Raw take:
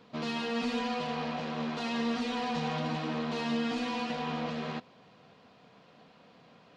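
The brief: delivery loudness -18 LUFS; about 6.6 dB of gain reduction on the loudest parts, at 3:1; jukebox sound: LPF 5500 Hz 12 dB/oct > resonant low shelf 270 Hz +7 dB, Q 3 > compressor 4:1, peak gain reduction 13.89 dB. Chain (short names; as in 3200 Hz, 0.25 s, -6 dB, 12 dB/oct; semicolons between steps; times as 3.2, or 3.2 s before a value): compressor 3:1, threshold -37 dBFS; LPF 5500 Hz 12 dB/oct; resonant low shelf 270 Hz +7 dB, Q 3; compressor 4:1, threshold -42 dBFS; gain +26 dB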